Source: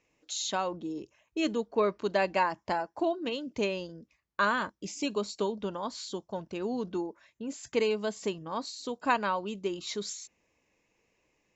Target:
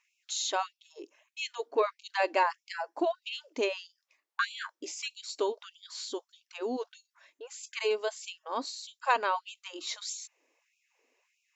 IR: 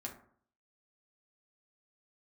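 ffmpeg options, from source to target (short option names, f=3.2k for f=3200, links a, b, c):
-af "acontrast=88,afftfilt=real='re*gte(b*sr/1024,220*pow(2300/220,0.5+0.5*sin(2*PI*1.6*pts/sr)))':imag='im*gte(b*sr/1024,220*pow(2300/220,0.5+0.5*sin(2*PI*1.6*pts/sr)))':win_size=1024:overlap=0.75,volume=-6dB"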